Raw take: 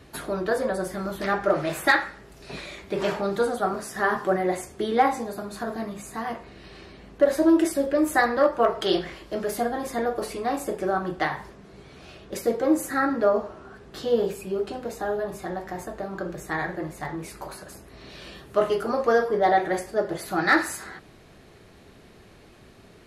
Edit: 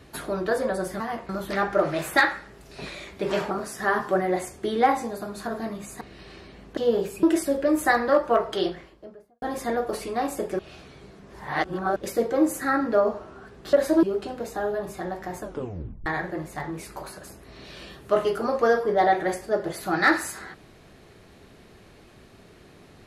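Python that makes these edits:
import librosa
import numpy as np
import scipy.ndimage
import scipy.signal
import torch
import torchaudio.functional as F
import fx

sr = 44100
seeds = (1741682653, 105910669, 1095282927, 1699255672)

y = fx.studio_fade_out(x, sr, start_s=8.55, length_s=1.16)
y = fx.edit(y, sr, fx.cut(start_s=3.22, length_s=0.45),
    fx.move(start_s=6.17, length_s=0.29, to_s=1.0),
    fx.swap(start_s=7.22, length_s=0.3, other_s=14.02, other_length_s=0.46),
    fx.reverse_span(start_s=10.88, length_s=1.37),
    fx.tape_stop(start_s=15.86, length_s=0.65), tone=tone)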